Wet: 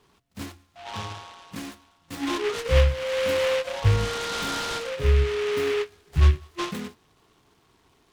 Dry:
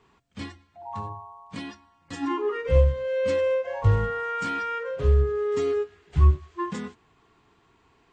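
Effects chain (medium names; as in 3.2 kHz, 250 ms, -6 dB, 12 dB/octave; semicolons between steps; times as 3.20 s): delay time shaken by noise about 2 kHz, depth 0.12 ms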